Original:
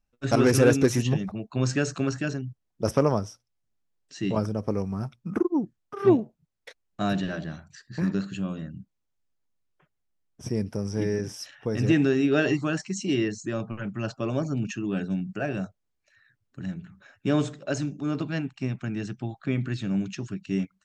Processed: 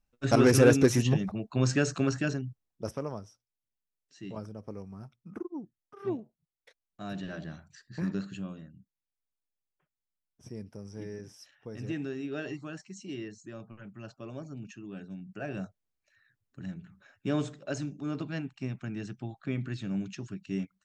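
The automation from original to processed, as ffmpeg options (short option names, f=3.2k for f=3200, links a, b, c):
-af "volume=15dB,afade=t=out:st=2.3:d=0.67:silence=0.223872,afade=t=in:st=7.04:d=0.4:silence=0.398107,afade=t=out:st=8.3:d=0.42:silence=0.398107,afade=t=in:st=15.19:d=0.4:silence=0.398107"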